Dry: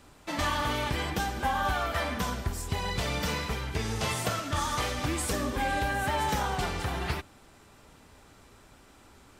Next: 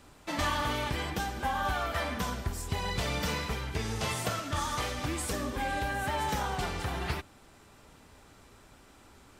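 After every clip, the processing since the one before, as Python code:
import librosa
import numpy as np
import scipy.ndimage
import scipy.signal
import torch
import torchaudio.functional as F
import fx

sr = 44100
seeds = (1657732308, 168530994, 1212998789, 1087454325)

y = fx.rider(x, sr, range_db=4, speed_s=2.0)
y = F.gain(torch.from_numpy(y), -2.5).numpy()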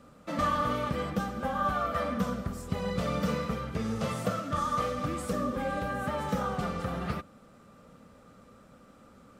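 y = fx.small_body(x, sr, hz=(200.0, 510.0, 1200.0), ring_ms=30, db=17)
y = F.gain(torch.from_numpy(y), -8.0).numpy()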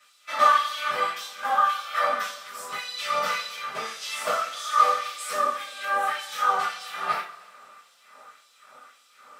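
y = fx.filter_lfo_highpass(x, sr, shape='sine', hz=1.8, low_hz=840.0, high_hz=3900.0, q=1.4)
y = fx.rev_double_slope(y, sr, seeds[0], early_s=0.3, late_s=1.8, knee_db=-20, drr_db=-9.0)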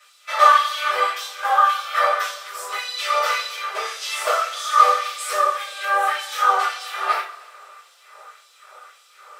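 y = fx.brickwall_highpass(x, sr, low_hz=340.0)
y = F.gain(torch.from_numpy(y), 5.5).numpy()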